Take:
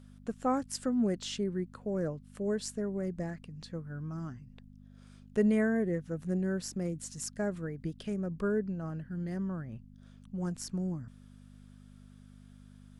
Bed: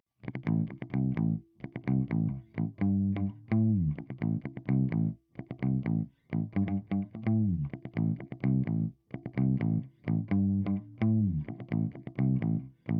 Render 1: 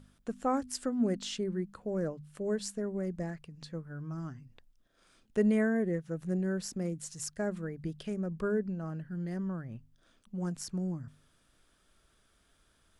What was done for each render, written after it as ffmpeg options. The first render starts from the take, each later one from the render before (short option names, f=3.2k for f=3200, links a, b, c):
-af "bandreject=f=50:t=h:w=4,bandreject=f=100:t=h:w=4,bandreject=f=150:t=h:w=4,bandreject=f=200:t=h:w=4,bandreject=f=250:t=h:w=4"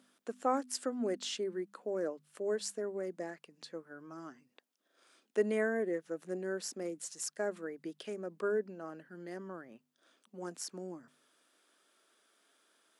-af "highpass=f=290:w=0.5412,highpass=f=290:w=1.3066"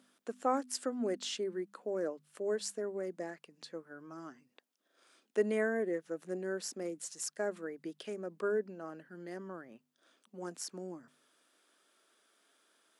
-af anull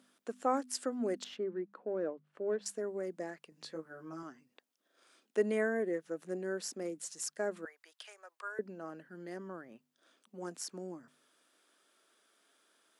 -filter_complex "[0:a]asettb=1/sr,asplit=3[a][b][c];[a]atrim=end=1.244[d];[b]atrim=start=1.24:end=2.66,asetpts=PTS-STARTPTS,afade=t=in:d=0.004:c=qsin,afade=t=out:st=1.416:d=0.004:c=qsin,adynamicsmooth=sensitivity=2:basefreq=1.9k[e];[c]atrim=start=2.656[f];[d][e]acrossfade=d=0.004:c1=hsin:c2=qsin[g];[g][f]acrossfade=d=0.004:c1=qsin:c2=hsin,asettb=1/sr,asplit=3[h][i][j];[h]atrim=end=3.504[k];[i]atrim=start=3.5:end=4.23,asetpts=PTS-STARTPTS,afade=t=in:d=0.004:c=qsin,afade=t=out:st=0.726:d=0.004:c=qsin,asplit=2[l][m];[m]adelay=19,volume=-2.5dB[n];[l][n]amix=inputs=2:normalize=0,atrim=end_sample=32193[o];[j]atrim=start=4.226[p];[k][o]acrossfade=d=0.004:c1=hsin:c2=qsin[q];[q][p]acrossfade=d=0.004:c1=qsin:c2=hsin,asettb=1/sr,asplit=3[r][s][t];[r]atrim=end=7.654[u];[s]atrim=start=7.65:end=8.59,asetpts=PTS-STARTPTS,afade=t=in:d=0.004:c=qsin,afade=t=out:st=0.936:d=0.004:c=qsin,highpass=f=820:w=0.5412,highpass=f=820:w=1.3066[v];[t]atrim=start=8.586[w];[u][v]acrossfade=d=0.004:c1=hsin:c2=qsin[x];[x][w]acrossfade=d=0.004:c1=qsin:c2=hsin"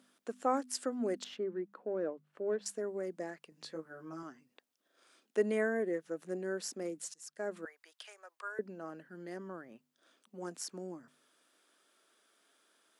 -filter_complex "[0:a]asplit=2[a][b];[a]atrim=end=7.14,asetpts=PTS-STARTPTS,afade=t=out:st=7.136:d=0.004:c=hsin:silence=0.0749894[c];[b]atrim=start=7.14,asetpts=PTS-STARTPTS,afade=t=in:d=0.46:silence=0.0749894[d];[c][d]concat=n=2:v=0:a=1"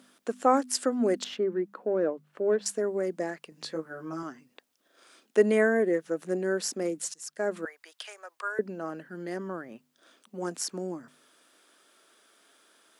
-af "volume=9dB"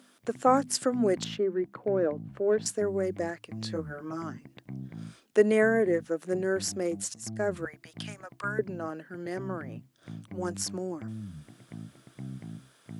-filter_complex "[1:a]volume=-12.5dB[a];[0:a][a]amix=inputs=2:normalize=0"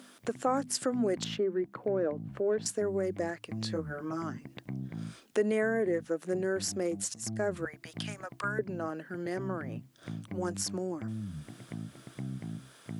-filter_complex "[0:a]asplit=2[a][b];[b]alimiter=limit=-20.5dB:level=0:latency=1:release=15,volume=-1dB[c];[a][c]amix=inputs=2:normalize=0,acompressor=threshold=-41dB:ratio=1.5"